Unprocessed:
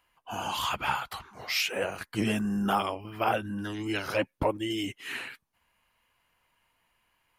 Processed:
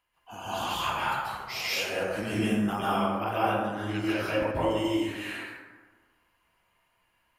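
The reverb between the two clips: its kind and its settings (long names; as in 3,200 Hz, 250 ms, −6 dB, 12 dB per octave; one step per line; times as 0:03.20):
dense smooth reverb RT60 1.4 s, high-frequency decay 0.45×, pre-delay 120 ms, DRR −8.5 dB
level −7.5 dB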